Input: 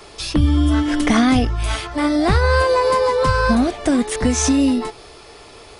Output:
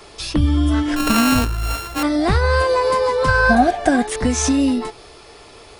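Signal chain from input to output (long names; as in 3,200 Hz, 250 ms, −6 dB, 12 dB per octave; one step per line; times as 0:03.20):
0:00.96–0:02.03: samples sorted by size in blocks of 32 samples
0:03.28–0:04.07: hollow resonant body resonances 740/1,600 Hz, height 17 dB
level −1 dB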